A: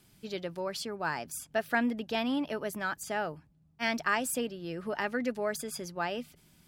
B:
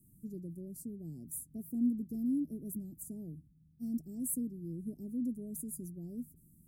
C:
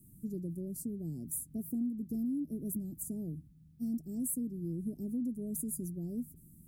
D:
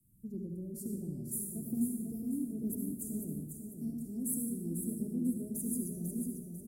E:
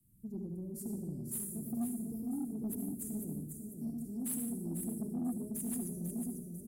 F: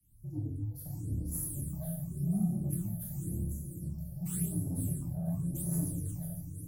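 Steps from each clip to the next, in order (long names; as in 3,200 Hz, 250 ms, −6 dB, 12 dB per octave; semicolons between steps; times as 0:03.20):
inverse Chebyshev band-stop filter 990–3,300 Hz, stop band 70 dB; parametric band 500 Hz −4.5 dB 0.66 octaves; level +1 dB
downward compressor 6 to 1, threshold −38 dBFS, peak gain reduction 11 dB; level +5.5 dB
repeating echo 496 ms, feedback 50%, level −5 dB; convolution reverb RT60 1.0 s, pre-delay 57 ms, DRR 3 dB; multiband upward and downward expander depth 40%; level −3 dB
soft clipping −30.5 dBFS, distortion −16 dB
frequency shifter −79 Hz; dense smooth reverb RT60 0.7 s, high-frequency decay 0.9×, DRR −3.5 dB; all-pass phaser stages 8, 0.91 Hz, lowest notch 310–3,200 Hz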